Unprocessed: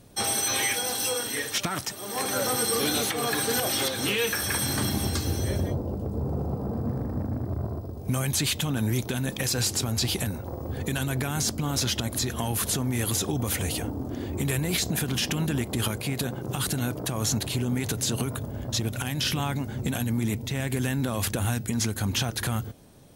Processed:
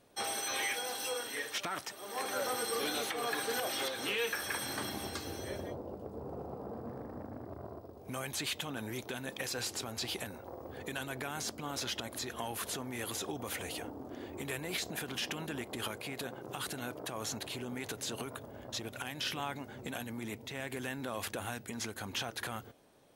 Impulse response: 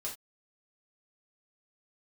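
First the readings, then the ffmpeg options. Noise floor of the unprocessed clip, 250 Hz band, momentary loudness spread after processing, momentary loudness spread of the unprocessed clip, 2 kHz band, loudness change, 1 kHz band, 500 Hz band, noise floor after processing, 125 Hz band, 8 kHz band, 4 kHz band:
−37 dBFS, −13.5 dB, 10 LU, 6 LU, −6.5 dB, −11.0 dB, −6.0 dB, −7.5 dB, −52 dBFS, −19.5 dB, −12.5 dB, −9.0 dB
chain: -af "bass=frequency=250:gain=-15,treble=frequency=4000:gain=-7,volume=-6dB"

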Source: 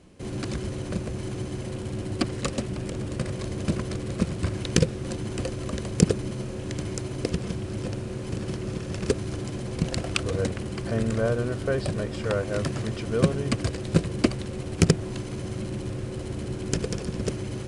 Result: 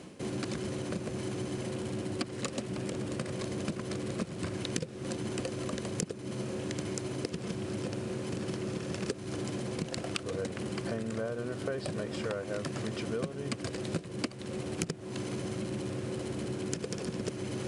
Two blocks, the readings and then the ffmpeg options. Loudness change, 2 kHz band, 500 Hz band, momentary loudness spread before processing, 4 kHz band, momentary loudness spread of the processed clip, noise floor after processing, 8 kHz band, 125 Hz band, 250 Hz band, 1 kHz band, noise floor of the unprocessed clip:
−7.5 dB, −6.0 dB, −6.0 dB, 9 LU, −5.5 dB, 1 LU, −43 dBFS, −5.5 dB, −10.0 dB, −6.5 dB, −5.0 dB, −35 dBFS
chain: -af "areverse,acompressor=mode=upward:threshold=-28dB:ratio=2.5,areverse,highpass=150,acompressor=threshold=-31dB:ratio=8"

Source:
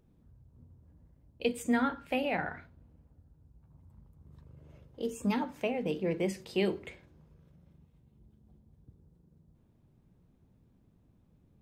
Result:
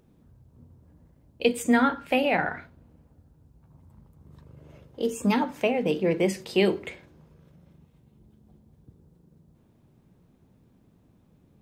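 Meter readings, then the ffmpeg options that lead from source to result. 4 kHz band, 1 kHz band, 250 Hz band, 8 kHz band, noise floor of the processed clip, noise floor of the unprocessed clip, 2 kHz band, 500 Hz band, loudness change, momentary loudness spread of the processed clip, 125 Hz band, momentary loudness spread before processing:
+8.5 dB, +8.5 dB, +7.0 dB, +8.5 dB, −62 dBFS, −66 dBFS, +8.5 dB, +8.0 dB, +7.5 dB, 10 LU, +6.0 dB, 10 LU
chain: -af "lowshelf=frequency=100:gain=-10,volume=8.5dB"

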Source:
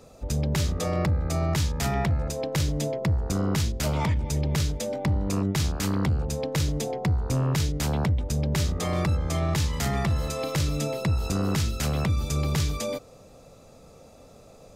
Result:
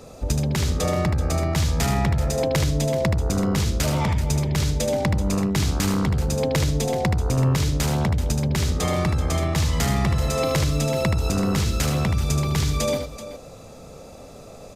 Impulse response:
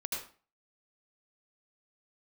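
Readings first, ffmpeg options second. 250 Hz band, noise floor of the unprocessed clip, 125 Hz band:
+4.5 dB, −51 dBFS, +3.5 dB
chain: -af "acompressor=threshold=-27dB:ratio=6,aecho=1:1:76|382:0.501|0.224,aresample=32000,aresample=44100,volume=7.5dB"

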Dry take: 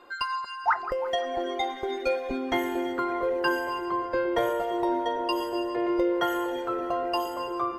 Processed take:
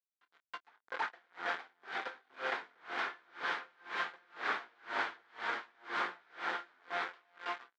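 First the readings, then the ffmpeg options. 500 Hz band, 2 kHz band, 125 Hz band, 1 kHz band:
−20.5 dB, −4.0 dB, below −15 dB, −12.0 dB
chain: -filter_complex "[0:a]dynaudnorm=framelen=300:gausssize=9:maxgain=4dB,aresample=16000,acrusher=bits=3:mix=0:aa=0.000001,aresample=44100,asoftclip=type=tanh:threshold=-26.5dB,flanger=delay=16:depth=5.7:speed=0.65,aemphasis=mode=production:type=50fm,asplit=2[link_01][link_02];[link_02]aecho=0:1:324:0.422[link_03];[link_01][link_03]amix=inputs=2:normalize=0,aeval=exprs='(mod(35.5*val(0)+1,2)-1)/35.5':channel_layout=same,highpass=480,equalizer=frequency=570:width_type=q:width=4:gain=-7,equalizer=frequency=1500:width_type=q:width=4:gain=6,equalizer=frequency=2700:width_type=q:width=4:gain=-8,lowpass=frequency=2900:width=0.5412,lowpass=frequency=2900:width=1.3066,asplit=2[link_04][link_05];[link_05]adelay=27,volume=-13.5dB[link_06];[link_04][link_06]amix=inputs=2:normalize=0,aeval=exprs='val(0)*pow(10,-35*(0.5-0.5*cos(2*PI*2*n/s))/20)':channel_layout=same,volume=9.5dB"

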